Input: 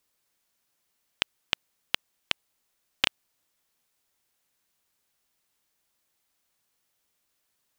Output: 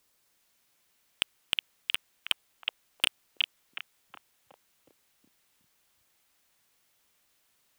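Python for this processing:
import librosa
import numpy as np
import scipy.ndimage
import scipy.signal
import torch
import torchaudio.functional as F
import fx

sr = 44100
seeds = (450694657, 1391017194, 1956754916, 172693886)

y = np.clip(10.0 ** (15.5 / 20.0) * x, -1.0, 1.0) / 10.0 ** (15.5 / 20.0)
y = fx.echo_stepped(y, sr, ms=367, hz=2700.0, octaves=-0.7, feedback_pct=70, wet_db=-2.0)
y = y * 10.0 ** (5.0 / 20.0)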